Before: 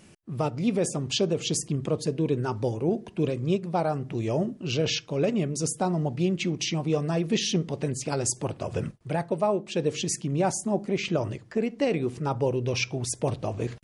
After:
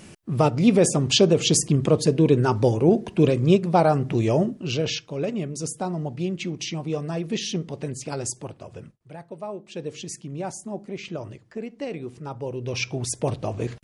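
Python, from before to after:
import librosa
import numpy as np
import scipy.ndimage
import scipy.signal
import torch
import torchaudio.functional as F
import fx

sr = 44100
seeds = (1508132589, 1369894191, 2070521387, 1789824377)

y = fx.gain(x, sr, db=fx.line((4.14, 8.0), (5.08, -2.0), (8.24, -2.0), (8.99, -14.0), (9.76, -6.5), (12.43, -6.5), (12.91, 2.0)))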